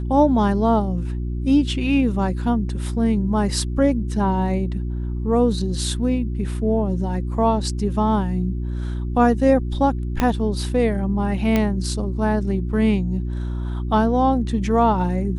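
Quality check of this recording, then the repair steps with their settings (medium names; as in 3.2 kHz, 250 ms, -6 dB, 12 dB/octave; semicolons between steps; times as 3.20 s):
hum 60 Hz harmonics 6 -25 dBFS
10.20 s: pop -6 dBFS
11.56 s: pop -7 dBFS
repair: de-click; de-hum 60 Hz, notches 6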